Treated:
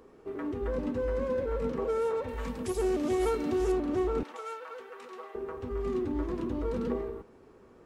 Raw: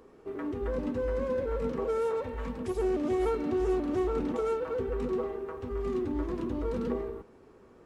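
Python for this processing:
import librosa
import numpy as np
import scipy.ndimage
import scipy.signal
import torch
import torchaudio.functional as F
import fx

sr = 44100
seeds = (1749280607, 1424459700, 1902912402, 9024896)

y = fx.high_shelf(x, sr, hz=3800.0, db=11.0, at=(2.28, 3.72))
y = fx.highpass(y, sr, hz=1000.0, slope=12, at=(4.23, 5.35))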